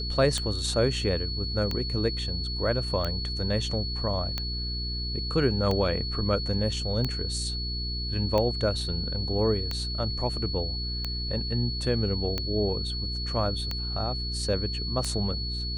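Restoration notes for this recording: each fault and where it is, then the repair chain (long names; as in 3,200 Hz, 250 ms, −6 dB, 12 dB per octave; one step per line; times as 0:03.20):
mains hum 60 Hz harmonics 7 −33 dBFS
scratch tick 45 rpm −15 dBFS
whistle 4,400 Hz −33 dBFS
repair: click removal
notch filter 4,400 Hz, Q 30
hum removal 60 Hz, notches 7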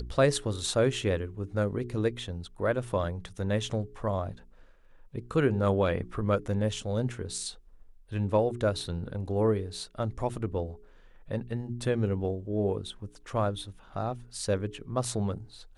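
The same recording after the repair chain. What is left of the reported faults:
none of them is left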